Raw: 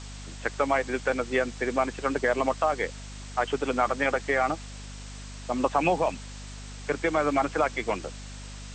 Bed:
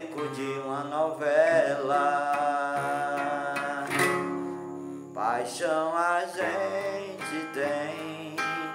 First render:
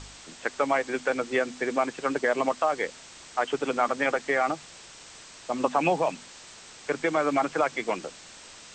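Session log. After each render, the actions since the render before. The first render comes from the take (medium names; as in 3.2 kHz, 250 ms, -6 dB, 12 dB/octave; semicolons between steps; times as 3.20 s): de-hum 50 Hz, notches 5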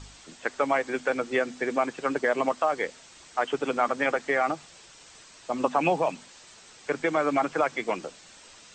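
noise reduction 6 dB, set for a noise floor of -48 dBFS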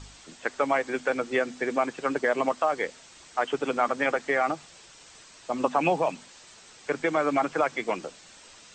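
no audible change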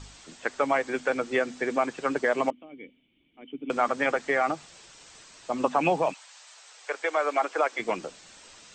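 2.50–3.70 s: cascade formant filter i; 6.12–7.78 s: high-pass 770 Hz -> 320 Hz 24 dB/octave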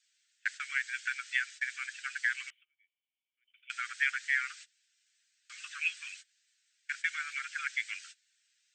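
gate -38 dBFS, range -23 dB; steep high-pass 1.5 kHz 72 dB/octave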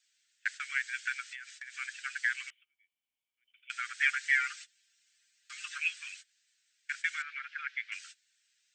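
1.22–1.77 s: compression 12:1, threshold -40 dBFS; 4.00–5.78 s: comb 5.7 ms, depth 93%; 7.22–7.92 s: distance through air 300 m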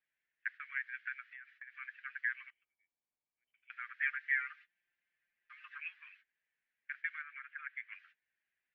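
low-pass 1.8 kHz 24 dB/octave; peaking EQ 1.4 kHz -9 dB 0.32 oct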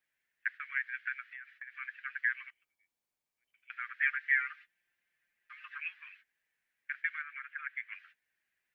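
trim +4.5 dB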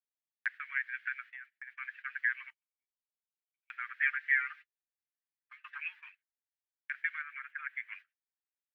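peaking EQ 900 Hz +11.5 dB 0.21 oct; gate -50 dBFS, range -27 dB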